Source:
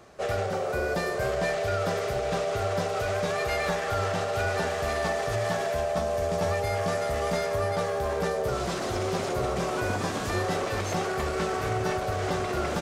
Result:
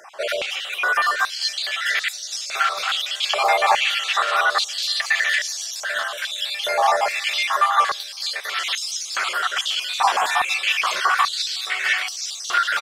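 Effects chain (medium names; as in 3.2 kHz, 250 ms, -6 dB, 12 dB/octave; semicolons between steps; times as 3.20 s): random holes in the spectrogram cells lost 38%; peaking EQ 3.3 kHz +8 dB 0.71 oct; in parallel at -3 dB: peak limiter -24 dBFS, peak gain reduction 7.5 dB; on the sum: frequency-shifting echo 227 ms, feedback 47%, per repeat -51 Hz, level -15.5 dB; step-sequenced high-pass 2.4 Hz 870–5600 Hz; trim +5 dB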